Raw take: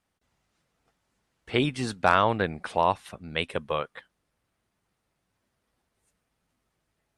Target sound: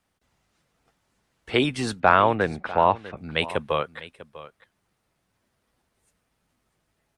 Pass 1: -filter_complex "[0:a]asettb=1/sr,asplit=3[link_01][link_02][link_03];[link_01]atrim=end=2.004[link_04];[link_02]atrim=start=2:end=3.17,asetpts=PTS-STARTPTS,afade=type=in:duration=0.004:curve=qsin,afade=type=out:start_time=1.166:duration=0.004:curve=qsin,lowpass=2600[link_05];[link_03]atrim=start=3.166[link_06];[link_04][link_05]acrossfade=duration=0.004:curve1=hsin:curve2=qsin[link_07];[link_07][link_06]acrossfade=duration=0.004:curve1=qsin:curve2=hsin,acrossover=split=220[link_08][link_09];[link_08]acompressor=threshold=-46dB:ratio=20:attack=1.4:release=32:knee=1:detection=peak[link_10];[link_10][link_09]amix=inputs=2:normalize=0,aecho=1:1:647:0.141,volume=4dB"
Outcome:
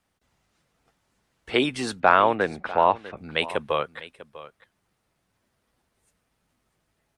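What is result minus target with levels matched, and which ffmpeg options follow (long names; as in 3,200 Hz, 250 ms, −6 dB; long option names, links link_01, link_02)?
downward compressor: peak gain reduction +11 dB
-filter_complex "[0:a]asettb=1/sr,asplit=3[link_01][link_02][link_03];[link_01]atrim=end=2.004[link_04];[link_02]atrim=start=2:end=3.17,asetpts=PTS-STARTPTS,afade=type=in:duration=0.004:curve=qsin,afade=type=out:start_time=1.166:duration=0.004:curve=qsin,lowpass=2600[link_05];[link_03]atrim=start=3.166[link_06];[link_04][link_05]acrossfade=duration=0.004:curve1=hsin:curve2=qsin[link_07];[link_07][link_06]acrossfade=duration=0.004:curve1=qsin:curve2=hsin,acrossover=split=220[link_08][link_09];[link_08]acompressor=threshold=-34.5dB:ratio=20:attack=1.4:release=32:knee=1:detection=peak[link_10];[link_10][link_09]amix=inputs=2:normalize=0,aecho=1:1:647:0.141,volume=4dB"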